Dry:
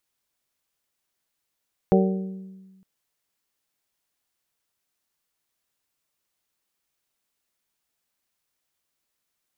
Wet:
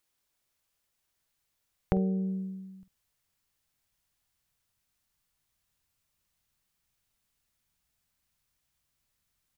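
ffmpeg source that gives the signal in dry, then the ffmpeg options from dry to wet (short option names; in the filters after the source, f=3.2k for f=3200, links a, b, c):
-f lavfi -i "aevalsrc='0.168*pow(10,-3*t/1.43)*sin(2*PI*190*t)+0.133*pow(10,-3*t/0.88)*sin(2*PI*380*t)+0.106*pow(10,-3*t/0.775)*sin(2*PI*456*t)+0.0841*pow(10,-3*t/0.663)*sin(2*PI*570*t)+0.0668*pow(10,-3*t/0.542)*sin(2*PI*760*t)':d=0.91:s=44100"
-filter_complex "[0:a]asplit=2[a][b];[b]adelay=48,volume=-13dB[c];[a][c]amix=inputs=2:normalize=0,asubboost=boost=5.5:cutoff=150,acompressor=threshold=-28dB:ratio=2.5"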